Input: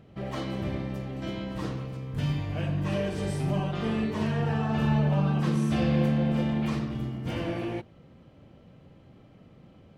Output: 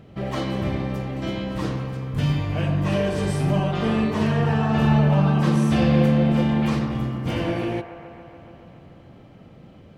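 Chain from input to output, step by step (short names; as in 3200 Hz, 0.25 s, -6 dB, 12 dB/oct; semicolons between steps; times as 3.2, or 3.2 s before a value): band-limited delay 0.142 s, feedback 76%, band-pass 960 Hz, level -10 dB; gain +6.5 dB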